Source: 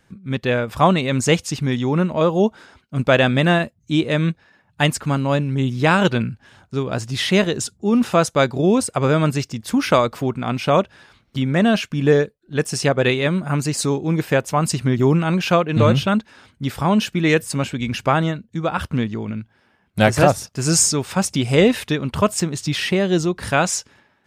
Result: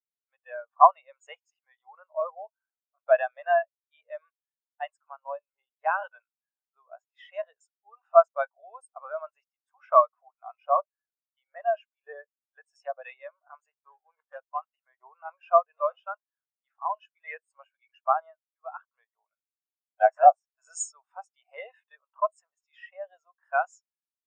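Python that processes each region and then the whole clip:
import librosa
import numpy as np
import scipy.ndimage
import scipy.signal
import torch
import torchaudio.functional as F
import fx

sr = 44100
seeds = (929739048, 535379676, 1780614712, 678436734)

y = fx.chain(x, sr, fx.dead_time(dead_ms=0.19),
    fx.dynamic_eq(hz=680.0, q=2.6, threshold_db=-31.0, ratio=4.0, max_db=-4), at=(13.71, 14.73))
y = fx.bin_compress(y, sr, power=0.6)
y = scipy.signal.sosfilt(scipy.signal.butter(4, 680.0, 'highpass', fs=sr, output='sos'), y)
y = fx.spectral_expand(y, sr, expansion=4.0)
y = F.gain(torch.from_numpy(y), -2.5).numpy()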